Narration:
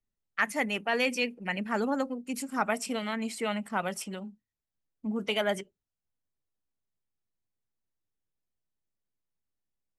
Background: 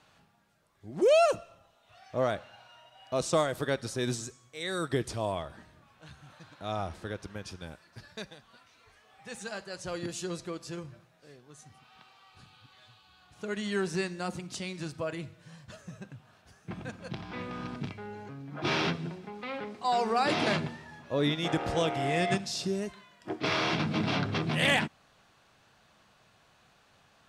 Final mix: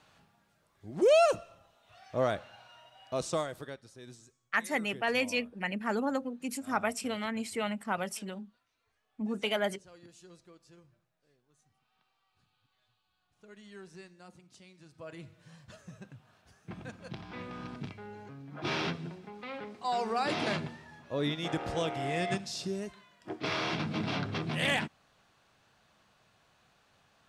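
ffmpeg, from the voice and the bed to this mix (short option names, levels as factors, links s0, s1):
-filter_complex "[0:a]adelay=4150,volume=0.794[s0];[1:a]volume=5.01,afade=t=out:st=2.88:d=0.94:silence=0.125893,afade=t=in:st=14.89:d=0.55:silence=0.188365[s1];[s0][s1]amix=inputs=2:normalize=0"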